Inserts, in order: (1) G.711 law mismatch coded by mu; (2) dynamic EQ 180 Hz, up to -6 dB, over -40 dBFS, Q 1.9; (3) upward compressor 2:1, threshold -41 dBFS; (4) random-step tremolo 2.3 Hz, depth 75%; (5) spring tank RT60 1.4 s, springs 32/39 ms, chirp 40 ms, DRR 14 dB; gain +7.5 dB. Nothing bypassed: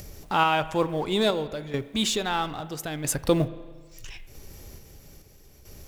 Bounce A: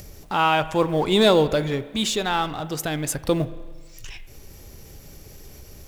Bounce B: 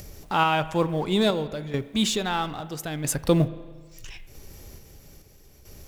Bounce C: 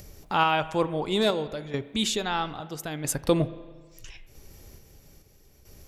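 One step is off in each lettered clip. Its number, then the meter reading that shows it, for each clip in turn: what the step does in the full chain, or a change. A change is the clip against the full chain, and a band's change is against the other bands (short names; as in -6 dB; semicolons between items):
4, momentary loudness spread change -9 LU; 2, momentary loudness spread change -8 LU; 1, distortion -22 dB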